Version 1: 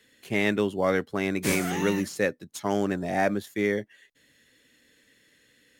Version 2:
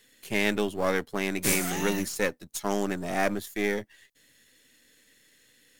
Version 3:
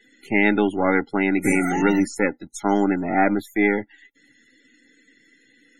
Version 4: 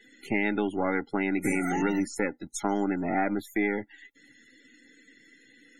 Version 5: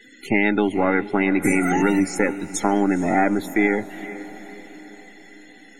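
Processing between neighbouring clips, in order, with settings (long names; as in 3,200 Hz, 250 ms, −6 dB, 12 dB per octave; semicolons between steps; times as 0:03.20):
gain on one half-wave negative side −7 dB; high-shelf EQ 4,900 Hz +10 dB
hollow resonant body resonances 290/810/1,400/2,000 Hz, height 11 dB, ringing for 25 ms; spectral peaks only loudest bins 64; level +2.5 dB
downward compressor 2.5 to 1, threshold −27 dBFS, peak gain reduction 10 dB
feedback delay with all-pass diffusion 462 ms, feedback 52%, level −15 dB; level +8 dB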